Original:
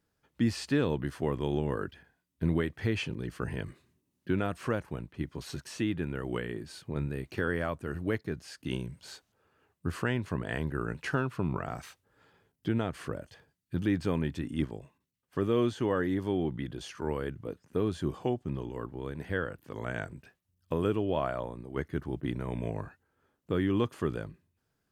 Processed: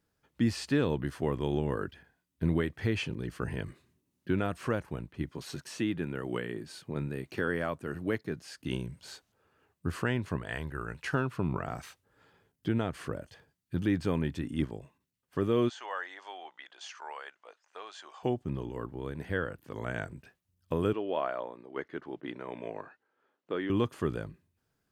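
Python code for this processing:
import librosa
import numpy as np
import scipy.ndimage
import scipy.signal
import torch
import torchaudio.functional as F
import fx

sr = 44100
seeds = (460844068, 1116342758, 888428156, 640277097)

y = fx.highpass(x, sr, hz=120.0, slope=12, at=(5.31, 8.52))
y = fx.peak_eq(y, sr, hz=250.0, db=-8.0, octaves=2.4, at=(10.38, 11.13))
y = fx.cheby1_bandpass(y, sr, low_hz=730.0, high_hz=7100.0, order=3, at=(15.68, 18.22), fade=0.02)
y = fx.bandpass_edges(y, sr, low_hz=370.0, high_hz=4100.0, at=(20.93, 23.7))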